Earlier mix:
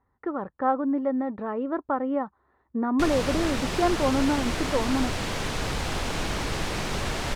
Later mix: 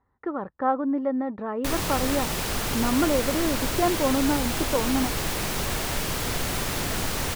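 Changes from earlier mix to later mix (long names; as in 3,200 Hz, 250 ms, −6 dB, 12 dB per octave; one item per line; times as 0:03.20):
background: entry −1.35 s
master: remove high-frequency loss of the air 66 metres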